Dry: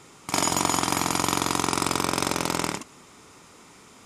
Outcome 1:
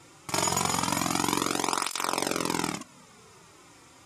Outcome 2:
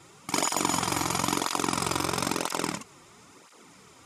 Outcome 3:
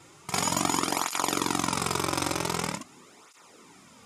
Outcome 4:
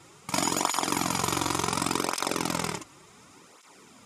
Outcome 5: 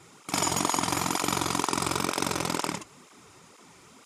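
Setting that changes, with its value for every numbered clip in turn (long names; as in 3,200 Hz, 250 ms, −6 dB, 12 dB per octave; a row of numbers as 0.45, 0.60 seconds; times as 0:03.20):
through-zero flanger with one copy inverted, nulls at: 0.26, 1, 0.45, 0.69, 2.1 Hertz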